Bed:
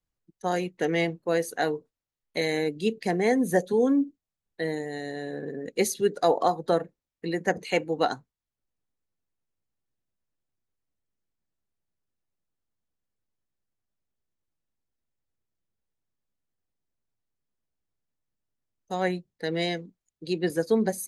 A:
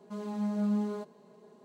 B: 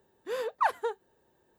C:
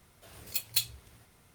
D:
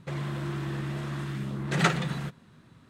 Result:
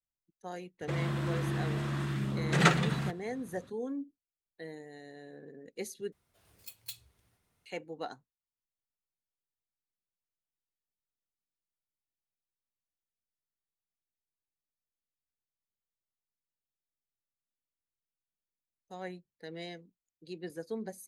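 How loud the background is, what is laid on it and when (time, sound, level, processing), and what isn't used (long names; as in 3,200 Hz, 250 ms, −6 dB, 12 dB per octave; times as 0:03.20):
bed −15 dB
0:00.81: mix in D
0:06.12: overwrite with C −15 dB
not used: A, B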